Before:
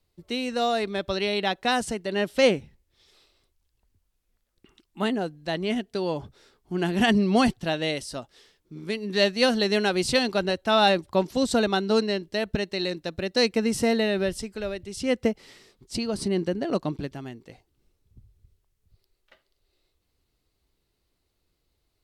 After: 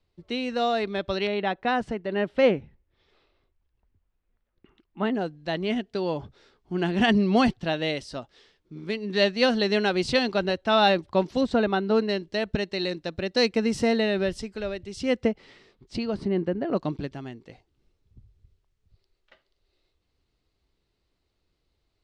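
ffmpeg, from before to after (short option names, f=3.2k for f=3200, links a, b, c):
-af "asetnsamples=n=441:p=0,asendcmd='1.27 lowpass f 2200;5.15 lowpass f 4700;11.41 lowpass f 2500;12.09 lowpass f 5700;15.25 lowpass f 3500;16.16 lowpass f 2100;16.77 lowpass f 5400',lowpass=4.3k"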